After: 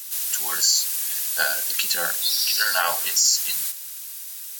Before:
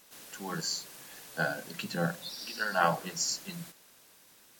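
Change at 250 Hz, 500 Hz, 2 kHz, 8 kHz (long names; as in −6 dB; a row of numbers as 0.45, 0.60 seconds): −12.5, 0.0, +8.5, +17.5 decibels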